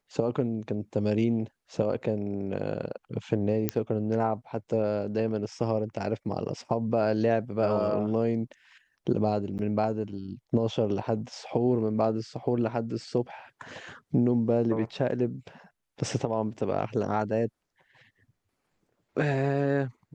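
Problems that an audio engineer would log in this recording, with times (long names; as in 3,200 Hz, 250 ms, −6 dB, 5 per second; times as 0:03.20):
0:03.69: click −10 dBFS
0:09.58–0:09.59: drop-out 9.3 ms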